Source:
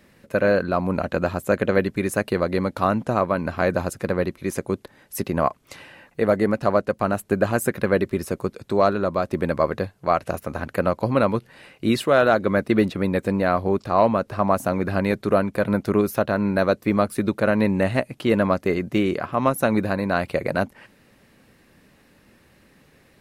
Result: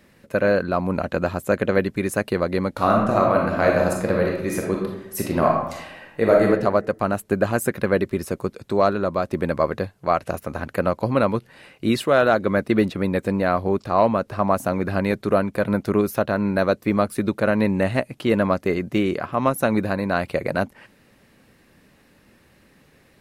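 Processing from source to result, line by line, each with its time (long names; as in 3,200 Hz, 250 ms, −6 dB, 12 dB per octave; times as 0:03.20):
0:02.71–0:06.47: thrown reverb, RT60 0.88 s, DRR −1 dB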